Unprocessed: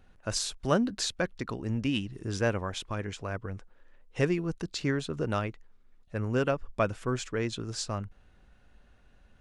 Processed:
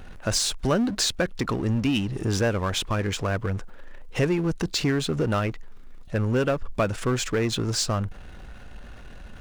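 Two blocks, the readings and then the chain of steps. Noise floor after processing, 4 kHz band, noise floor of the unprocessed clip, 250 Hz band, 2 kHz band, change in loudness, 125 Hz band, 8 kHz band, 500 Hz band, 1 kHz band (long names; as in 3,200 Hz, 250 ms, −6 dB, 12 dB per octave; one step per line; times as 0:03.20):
−42 dBFS, +8.5 dB, −60 dBFS, +6.0 dB, +5.0 dB, +6.0 dB, +7.0 dB, +8.5 dB, +5.0 dB, +5.0 dB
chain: downward compressor 2 to 1, threshold −32 dBFS, peak gain reduction 7 dB
power curve on the samples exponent 0.7
level +6 dB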